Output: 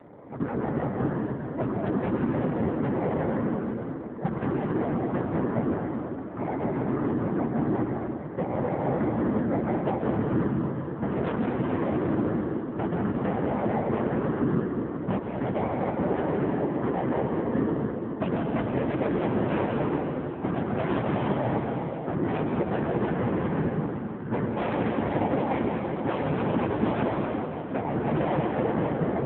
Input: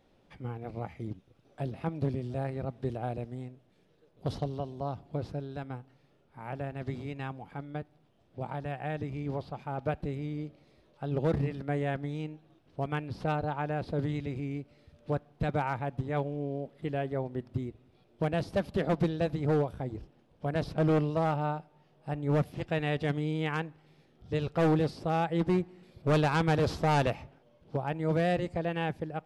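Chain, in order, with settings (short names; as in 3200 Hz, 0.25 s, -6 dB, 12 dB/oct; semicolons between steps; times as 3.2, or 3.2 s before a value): FFT order left unsorted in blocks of 32 samples; LPF 1700 Hz 24 dB/oct; sine folder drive 8 dB, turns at -19 dBFS; notches 60/120/180/240/300/360/420/480 Hz; limiter -24.5 dBFS, peak gain reduction 8.5 dB; graphic EQ 250/500/1000 Hz +6/+5/+5 dB; compressor 12:1, threshold -29 dBFS, peak gain reduction 8.5 dB; whisperiser; HPF 82 Hz 12 dB/oct; plate-style reverb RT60 3.2 s, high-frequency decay 0.9×, pre-delay 0.11 s, DRR 0.5 dB; gain +6.5 dB; AMR-NB 5.9 kbps 8000 Hz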